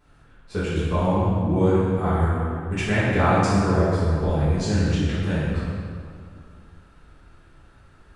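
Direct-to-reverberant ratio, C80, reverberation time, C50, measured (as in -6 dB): -12.0 dB, -0.5 dB, 2.3 s, -2.5 dB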